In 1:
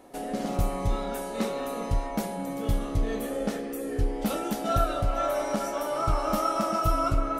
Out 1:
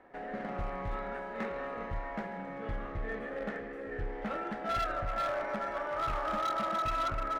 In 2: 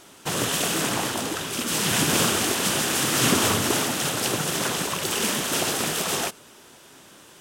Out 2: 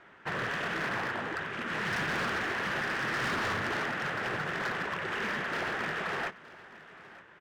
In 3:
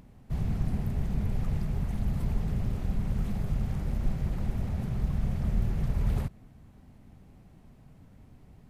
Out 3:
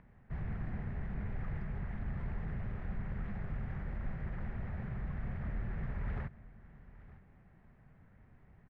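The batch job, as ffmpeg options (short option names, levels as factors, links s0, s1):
-filter_complex "[0:a]equalizer=f=280:t=o:w=0.3:g=-6,acrossover=split=410[s0][s1];[s0]asoftclip=type=tanh:threshold=0.0668[s2];[s1]acrusher=bits=2:mode=log:mix=0:aa=0.000001[s3];[s2][s3]amix=inputs=2:normalize=0,lowpass=f=1800:t=q:w=3.1,asoftclip=type=hard:threshold=0.0891,aecho=1:1:917:0.112,volume=0.422"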